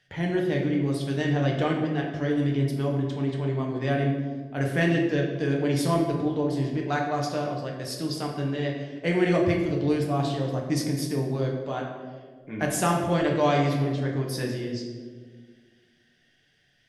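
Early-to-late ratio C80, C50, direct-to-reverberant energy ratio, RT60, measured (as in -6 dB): 6.0 dB, 4.0 dB, -1.0 dB, 1.7 s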